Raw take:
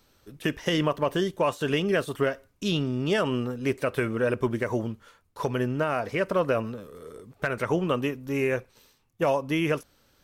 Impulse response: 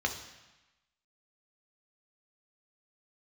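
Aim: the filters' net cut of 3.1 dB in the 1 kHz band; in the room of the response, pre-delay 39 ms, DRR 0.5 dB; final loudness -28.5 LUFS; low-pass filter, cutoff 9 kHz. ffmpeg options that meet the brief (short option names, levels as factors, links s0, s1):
-filter_complex "[0:a]lowpass=9000,equalizer=f=1000:t=o:g=-4,asplit=2[s0][s1];[1:a]atrim=start_sample=2205,adelay=39[s2];[s1][s2]afir=irnorm=-1:irlink=0,volume=0.422[s3];[s0][s3]amix=inputs=2:normalize=0,volume=0.75"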